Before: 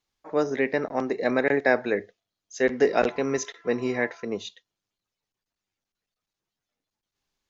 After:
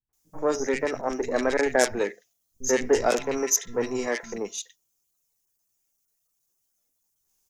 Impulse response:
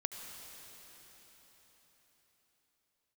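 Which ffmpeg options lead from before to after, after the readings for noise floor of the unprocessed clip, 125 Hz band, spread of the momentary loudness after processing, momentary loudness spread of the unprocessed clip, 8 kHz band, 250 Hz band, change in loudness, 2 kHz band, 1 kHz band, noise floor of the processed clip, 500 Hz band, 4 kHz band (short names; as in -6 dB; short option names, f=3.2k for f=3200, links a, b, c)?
under -85 dBFS, -4.0 dB, 10 LU, 10 LU, n/a, -2.0 dB, 0.0 dB, -2.5 dB, +0.5 dB, -76 dBFS, -0.5 dB, +4.0 dB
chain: -filter_complex "[0:a]aeval=exprs='0.473*(cos(1*acos(clip(val(0)/0.473,-1,1)))-cos(1*PI/2))+0.0668*(cos(4*acos(clip(val(0)/0.473,-1,1)))-cos(4*PI/2))+0.0841*(cos(6*acos(clip(val(0)/0.473,-1,1)))-cos(6*PI/2))+0.00944*(cos(8*acos(clip(val(0)/0.473,-1,1)))-cos(8*PI/2))':c=same,acrossover=split=190|1800[a][b][c];[b]adelay=90[d];[c]adelay=130[e];[a][d][e]amix=inputs=3:normalize=0,aexciter=amount=9:drive=3.4:freq=5.9k"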